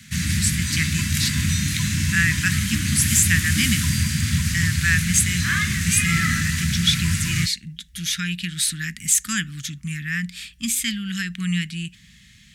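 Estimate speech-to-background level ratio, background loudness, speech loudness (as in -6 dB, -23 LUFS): -1.5 dB, -22.0 LUFS, -23.5 LUFS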